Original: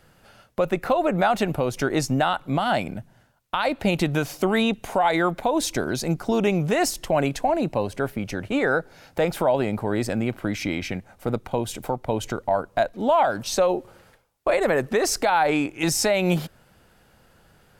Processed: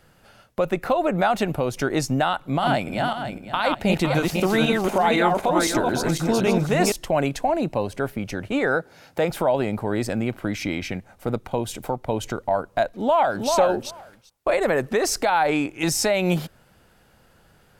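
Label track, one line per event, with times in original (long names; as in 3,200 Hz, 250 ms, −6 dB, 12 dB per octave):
2.370000	6.920000	feedback delay that plays each chunk backwards 254 ms, feedback 47%, level −2 dB
8.760000	9.300000	high-pass filter 88 Hz
12.930000	13.510000	delay throw 390 ms, feedback 10%, level −4 dB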